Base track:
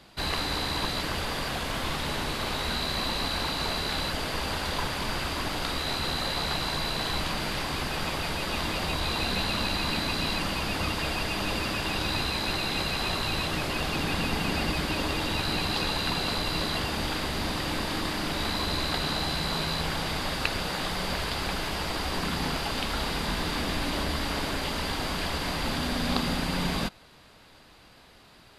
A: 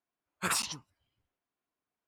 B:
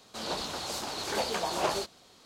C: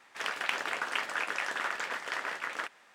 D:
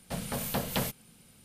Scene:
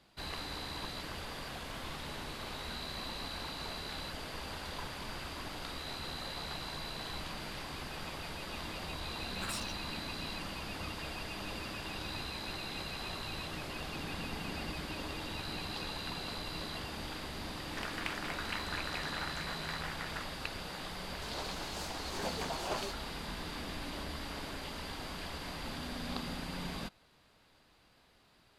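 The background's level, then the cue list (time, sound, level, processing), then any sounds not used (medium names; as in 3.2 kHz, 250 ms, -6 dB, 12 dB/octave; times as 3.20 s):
base track -12 dB
8.98 s: add A -12 dB + companding laws mixed up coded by mu
17.57 s: add C -8 dB
21.07 s: add B -8.5 dB
not used: D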